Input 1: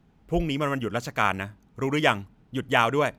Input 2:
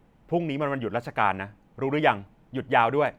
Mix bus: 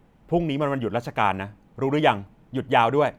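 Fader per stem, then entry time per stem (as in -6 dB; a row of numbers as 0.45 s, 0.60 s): -10.0 dB, +2.0 dB; 0.00 s, 0.00 s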